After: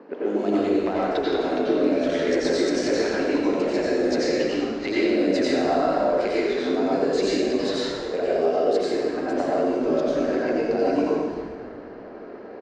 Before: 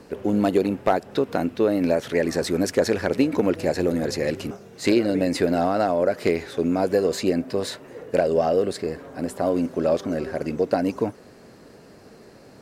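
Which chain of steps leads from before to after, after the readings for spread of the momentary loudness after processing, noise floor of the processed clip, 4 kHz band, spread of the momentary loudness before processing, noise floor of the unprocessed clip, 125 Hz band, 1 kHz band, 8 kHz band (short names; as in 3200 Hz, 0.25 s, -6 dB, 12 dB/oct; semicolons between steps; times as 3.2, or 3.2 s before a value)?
6 LU, -39 dBFS, +2.5 dB, 8 LU, -48 dBFS, -8.0 dB, +0.5 dB, -2.5 dB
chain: LPF 6500 Hz 24 dB/oct; low-pass opened by the level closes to 1400 Hz, open at -19.5 dBFS; HPF 240 Hz 24 dB/oct; limiter -13 dBFS, peak gain reduction 7 dB; compressor 4:1, threshold -30 dBFS, peak gain reduction 11 dB; on a send: frequency-shifting echo 0.242 s, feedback 45%, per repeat -110 Hz, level -17.5 dB; on the sum: plate-style reverb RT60 1.4 s, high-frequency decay 0.8×, pre-delay 75 ms, DRR -7 dB; gain +2 dB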